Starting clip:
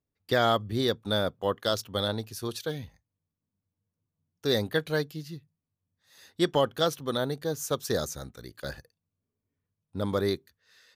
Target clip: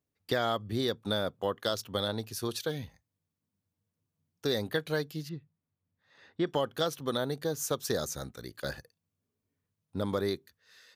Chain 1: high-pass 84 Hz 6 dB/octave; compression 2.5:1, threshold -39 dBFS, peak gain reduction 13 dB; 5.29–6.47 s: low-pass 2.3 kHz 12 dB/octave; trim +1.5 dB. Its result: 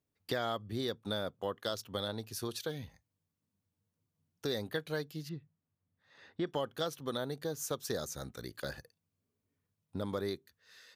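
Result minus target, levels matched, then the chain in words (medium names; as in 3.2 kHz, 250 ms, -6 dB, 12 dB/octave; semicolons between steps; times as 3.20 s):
compression: peak gain reduction +5.5 dB
high-pass 84 Hz 6 dB/octave; compression 2.5:1, threshold -30 dBFS, peak gain reduction 8 dB; 5.29–6.47 s: low-pass 2.3 kHz 12 dB/octave; trim +1.5 dB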